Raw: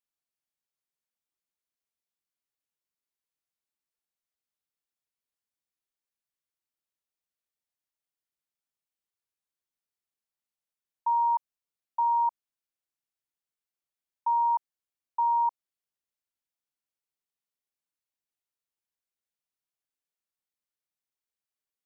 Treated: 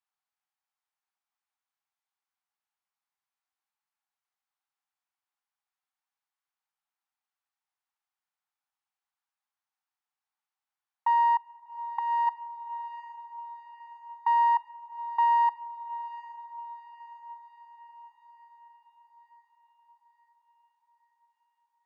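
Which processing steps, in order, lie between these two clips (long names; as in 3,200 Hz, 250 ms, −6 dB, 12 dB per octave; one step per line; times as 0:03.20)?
one-sided soft clipper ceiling −24.5 dBFS
spectral tilt −5 dB per octave
four-comb reverb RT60 1 s, combs from 28 ms, DRR 17 dB
dynamic equaliser 1,000 Hz, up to −4 dB, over −41 dBFS, Q 0.86
feedback delay with all-pass diffusion 805 ms, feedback 60%, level −15 dB
0:11.35–0:12.27: downward compressor 6 to 1, threshold −30 dBFS, peak gain reduction 10 dB
Chebyshev high-pass filter 770 Hz, order 5
level +8.5 dB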